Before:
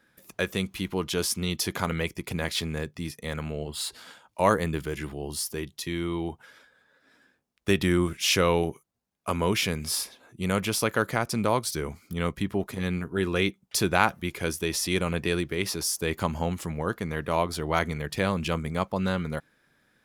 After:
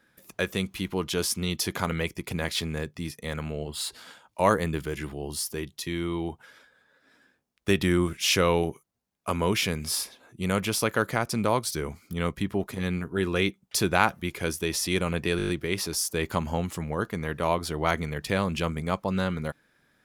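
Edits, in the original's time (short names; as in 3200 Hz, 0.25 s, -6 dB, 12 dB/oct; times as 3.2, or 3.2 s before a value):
15.37 stutter 0.02 s, 7 plays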